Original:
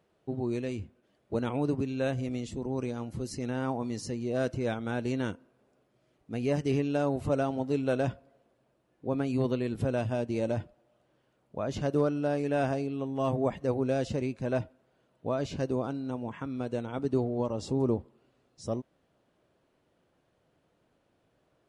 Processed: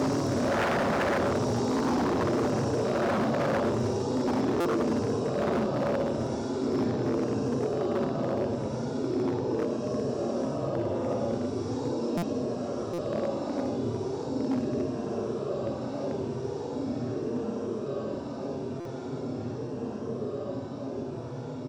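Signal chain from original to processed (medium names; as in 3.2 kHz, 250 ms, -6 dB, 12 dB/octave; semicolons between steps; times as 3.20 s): backward echo that repeats 110 ms, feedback 85%, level -0.5 dB; low-pass 5.4 kHz 12 dB/octave; feedback delay 1142 ms, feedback 53%, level -12 dB; Paulstretch 11×, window 0.05 s, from 18.84 s; wavefolder -29 dBFS; high-pass 84 Hz 12 dB/octave; buffer glitch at 4.60/12.17/12.93/18.80 s, samples 256, times 8; trim +8 dB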